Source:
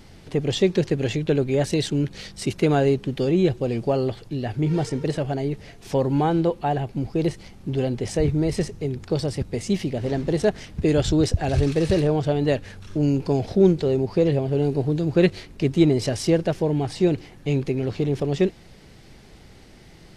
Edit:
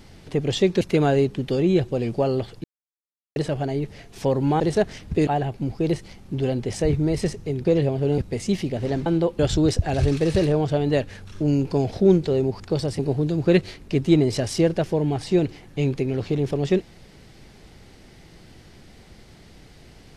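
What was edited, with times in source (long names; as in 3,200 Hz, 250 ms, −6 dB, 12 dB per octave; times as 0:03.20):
0:00.81–0:02.50: remove
0:04.33–0:05.05: silence
0:06.29–0:06.62: swap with 0:10.27–0:10.94
0:09.00–0:09.39: swap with 0:14.15–0:14.68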